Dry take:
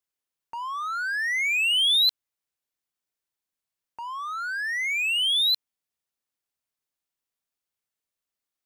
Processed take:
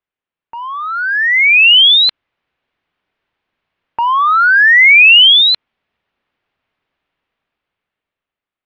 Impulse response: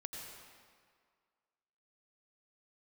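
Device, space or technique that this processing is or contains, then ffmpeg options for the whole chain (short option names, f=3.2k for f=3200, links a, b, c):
action camera in a waterproof case: -af "lowpass=f=3k:w=0.5412,lowpass=f=3k:w=1.3066,dynaudnorm=f=440:g=7:m=15dB,volume=6.5dB" -ar 24000 -c:a aac -b:a 64k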